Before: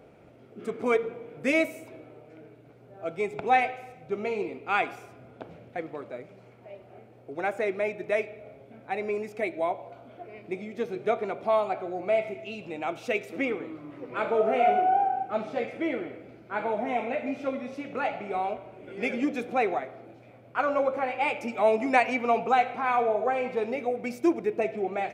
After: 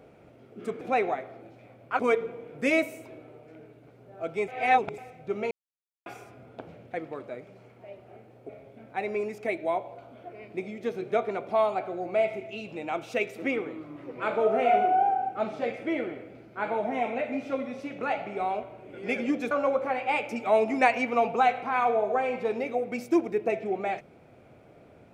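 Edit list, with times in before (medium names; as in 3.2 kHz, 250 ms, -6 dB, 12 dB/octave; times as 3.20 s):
3.30–3.80 s: reverse
4.33–4.88 s: mute
7.31–8.43 s: delete
19.45–20.63 s: move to 0.81 s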